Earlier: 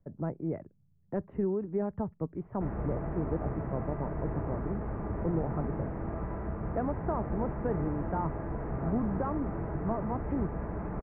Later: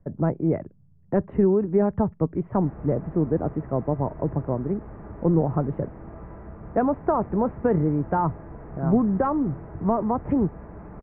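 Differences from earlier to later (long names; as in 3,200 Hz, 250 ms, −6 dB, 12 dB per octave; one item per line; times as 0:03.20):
speech +11.0 dB
background −5.0 dB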